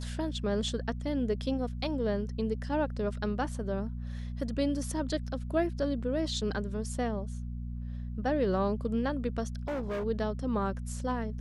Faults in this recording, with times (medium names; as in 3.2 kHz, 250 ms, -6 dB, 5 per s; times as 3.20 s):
hum 60 Hz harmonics 4 -37 dBFS
9.68–10.05 s: clipped -30.5 dBFS